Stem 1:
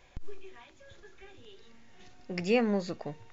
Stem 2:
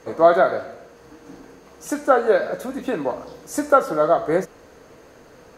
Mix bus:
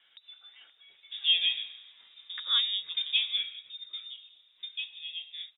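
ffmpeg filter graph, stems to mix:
ffmpeg -i stem1.wav -i stem2.wav -filter_complex "[0:a]bandpass=frequency=830:width_type=q:width=0.63:csg=0,volume=0dB[link_01];[1:a]agate=range=-33dB:threshold=-43dB:ratio=3:detection=peak,adelay=1050,volume=-12dB,afade=type=out:start_time=3.1:duration=0.64:silence=0.281838[link_02];[link_01][link_02]amix=inputs=2:normalize=0,equalizer=frequency=260:width_type=o:width=0.26:gain=12.5,lowpass=frequency=3300:width_type=q:width=0.5098,lowpass=frequency=3300:width_type=q:width=0.6013,lowpass=frequency=3300:width_type=q:width=0.9,lowpass=frequency=3300:width_type=q:width=2.563,afreqshift=-3900" out.wav

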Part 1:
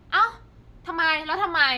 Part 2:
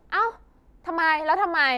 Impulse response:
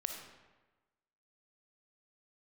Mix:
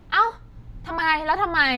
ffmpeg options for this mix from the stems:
-filter_complex "[0:a]volume=2dB[link_01];[1:a]adelay=0.5,volume=1dB,asplit=2[link_02][link_03];[link_03]apad=whole_len=78073[link_04];[link_01][link_04]sidechaincompress=threshold=-22dB:ratio=8:attack=16:release=980[link_05];[link_05][link_02]amix=inputs=2:normalize=0,asubboost=boost=10.5:cutoff=220"

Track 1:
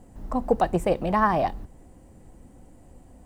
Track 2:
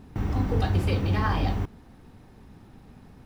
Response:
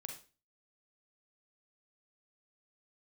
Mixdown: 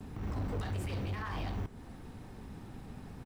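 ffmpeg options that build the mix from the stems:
-filter_complex "[0:a]highpass=frequency=1400:width=0.5412,highpass=frequency=1400:width=1.3066,volume=-7.5dB[link_01];[1:a]asoftclip=type=hard:threshold=-24.5dB,acompressor=threshold=-36dB:ratio=6,adelay=6.4,volume=0.5dB,asplit=2[link_02][link_03];[link_03]volume=-7.5dB[link_04];[2:a]atrim=start_sample=2205[link_05];[link_04][link_05]afir=irnorm=-1:irlink=0[link_06];[link_01][link_02][link_06]amix=inputs=3:normalize=0,alimiter=level_in=6.5dB:limit=-24dB:level=0:latency=1:release=113,volume=-6.5dB"

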